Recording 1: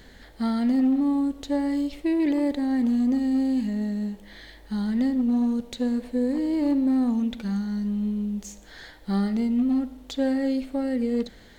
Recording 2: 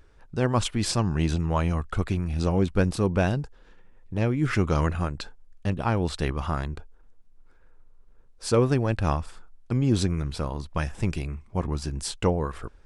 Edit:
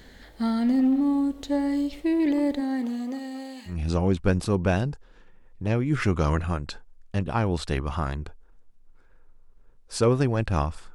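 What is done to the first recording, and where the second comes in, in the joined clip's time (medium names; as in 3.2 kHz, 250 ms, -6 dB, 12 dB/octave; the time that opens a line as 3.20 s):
recording 1
2.60–3.77 s: high-pass 240 Hz -> 950 Hz
3.71 s: go over to recording 2 from 2.22 s, crossfade 0.12 s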